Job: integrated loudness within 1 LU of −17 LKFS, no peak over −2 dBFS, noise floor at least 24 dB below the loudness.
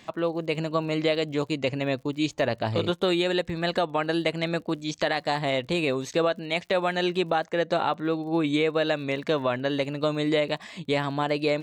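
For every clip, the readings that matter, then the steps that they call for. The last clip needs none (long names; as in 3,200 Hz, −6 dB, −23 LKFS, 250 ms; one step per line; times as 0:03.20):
crackle rate 50 per second; integrated loudness −26.5 LKFS; sample peak −13.5 dBFS; target loudness −17.0 LKFS
→ click removal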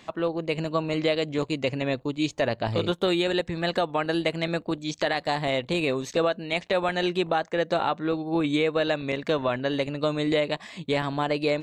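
crackle rate 0.17 per second; integrated loudness −26.5 LKFS; sample peak −13.5 dBFS; target loudness −17.0 LKFS
→ level +9.5 dB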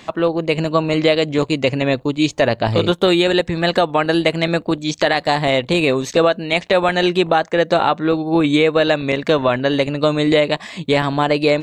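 integrated loudness −17.0 LKFS; sample peak −4.0 dBFS; background noise floor −42 dBFS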